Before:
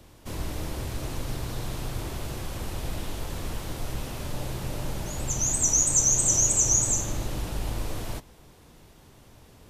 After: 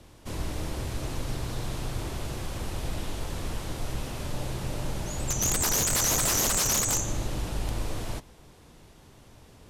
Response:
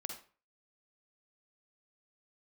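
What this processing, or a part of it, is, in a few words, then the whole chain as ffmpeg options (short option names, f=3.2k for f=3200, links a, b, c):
overflowing digital effects unit: -filter_complex "[0:a]asettb=1/sr,asplit=3[a][b][c];[a]atrim=end=5.434[d];[b]atrim=start=5.43:end=6.57,asetpts=PTS-STARTPTS,afade=t=in:d=0.004:c=qsin,afade=t=out:st=1.136:d=0.004:c=qsin,lowshelf=f=140:g=5[e];[c]atrim=start=6.566[f];[d][e]acrossfade=d=0.004:c1=hsin:c2=qsin[g];[g][f]acrossfade=d=0.004:c1=qsin:c2=hsin,aeval=exprs='(mod(7.5*val(0)+1,2)-1)/7.5':c=same,lowpass=12k"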